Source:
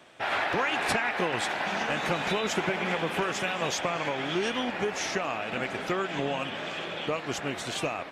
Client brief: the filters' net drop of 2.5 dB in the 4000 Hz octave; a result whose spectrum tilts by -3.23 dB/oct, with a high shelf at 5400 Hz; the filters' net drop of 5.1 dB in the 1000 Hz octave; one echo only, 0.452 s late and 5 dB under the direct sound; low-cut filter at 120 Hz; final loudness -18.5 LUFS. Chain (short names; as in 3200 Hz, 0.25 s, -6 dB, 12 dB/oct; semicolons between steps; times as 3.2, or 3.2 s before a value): HPF 120 Hz; bell 1000 Hz -7 dB; bell 4000 Hz -5 dB; high shelf 5400 Hz +5.5 dB; echo 0.452 s -5 dB; gain +11.5 dB